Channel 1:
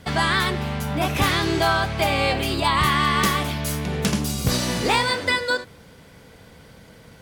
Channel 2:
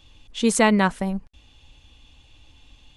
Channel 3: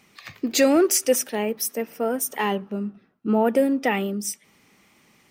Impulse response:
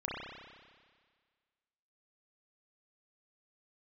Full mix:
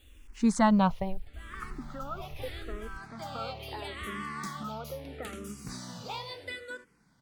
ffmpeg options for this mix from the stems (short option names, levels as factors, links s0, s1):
-filter_complex "[0:a]adelay=1200,volume=0.15[s0];[1:a]lowpass=f=2400:p=1,asubboost=boost=8:cutoff=150,acrusher=bits=9:mix=0:aa=0.000001,volume=0.794,asplit=2[s1][s2];[2:a]acompressor=threshold=0.0355:ratio=6,lowpass=f=1300:t=q:w=13,adelay=1350,volume=0.355[s3];[s2]apad=whole_len=371297[s4];[s0][s4]sidechaincompress=threshold=0.0126:ratio=10:attack=5.7:release=471[s5];[s5][s1][s3]amix=inputs=3:normalize=0,asplit=2[s6][s7];[s7]afreqshift=-0.76[s8];[s6][s8]amix=inputs=2:normalize=1"